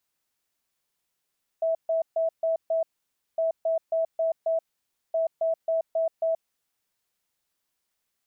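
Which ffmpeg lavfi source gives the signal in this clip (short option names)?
-f lavfi -i "aevalsrc='0.0841*sin(2*PI*653*t)*clip(min(mod(mod(t,1.76),0.27),0.13-mod(mod(t,1.76),0.27))/0.005,0,1)*lt(mod(t,1.76),1.35)':d=5.28:s=44100"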